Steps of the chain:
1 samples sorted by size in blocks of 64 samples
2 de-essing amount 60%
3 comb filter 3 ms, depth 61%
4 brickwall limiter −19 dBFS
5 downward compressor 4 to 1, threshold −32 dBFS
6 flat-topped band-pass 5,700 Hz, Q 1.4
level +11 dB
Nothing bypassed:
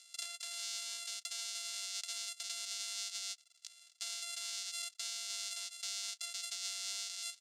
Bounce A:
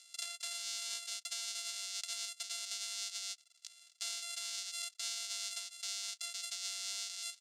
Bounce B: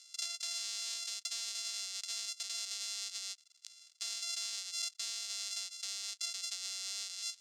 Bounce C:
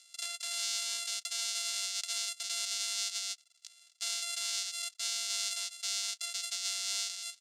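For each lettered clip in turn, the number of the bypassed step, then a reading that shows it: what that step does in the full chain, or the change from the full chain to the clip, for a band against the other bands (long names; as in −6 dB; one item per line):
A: 4, average gain reduction 2.0 dB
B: 3, change in integrated loudness +2.0 LU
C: 5, average gain reduction 5.0 dB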